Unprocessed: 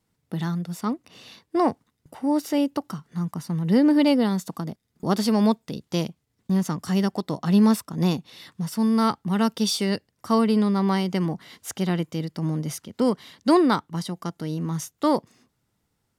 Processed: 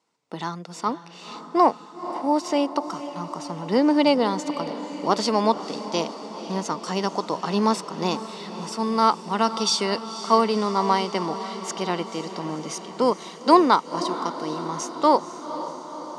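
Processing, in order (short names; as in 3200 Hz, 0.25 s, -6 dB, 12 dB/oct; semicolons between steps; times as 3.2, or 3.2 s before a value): speaker cabinet 400–7600 Hz, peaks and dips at 990 Hz +6 dB, 1700 Hz -6 dB, 3400 Hz -3 dB; diffused feedback echo 0.506 s, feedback 67%, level -12.5 dB; gain +4.5 dB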